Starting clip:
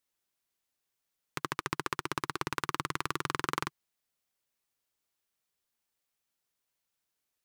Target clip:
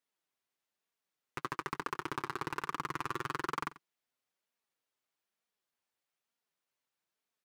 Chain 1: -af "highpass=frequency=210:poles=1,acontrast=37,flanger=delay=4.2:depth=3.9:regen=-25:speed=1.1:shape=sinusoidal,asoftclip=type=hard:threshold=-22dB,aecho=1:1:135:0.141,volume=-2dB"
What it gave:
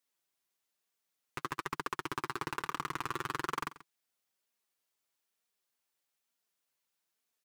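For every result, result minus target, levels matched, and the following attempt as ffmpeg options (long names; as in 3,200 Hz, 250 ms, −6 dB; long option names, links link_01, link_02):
echo 45 ms late; 8,000 Hz band +3.0 dB
-af "highpass=frequency=210:poles=1,acontrast=37,flanger=delay=4.2:depth=3.9:regen=-25:speed=1.1:shape=sinusoidal,asoftclip=type=hard:threshold=-22dB,aecho=1:1:90:0.141,volume=-2dB"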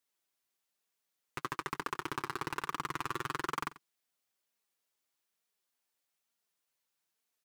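8,000 Hz band +3.0 dB
-af "highpass=frequency=210:poles=1,highshelf=frequency=4600:gain=-9.5,acontrast=37,flanger=delay=4.2:depth=3.9:regen=-25:speed=1.1:shape=sinusoidal,asoftclip=type=hard:threshold=-22dB,aecho=1:1:90:0.141,volume=-2dB"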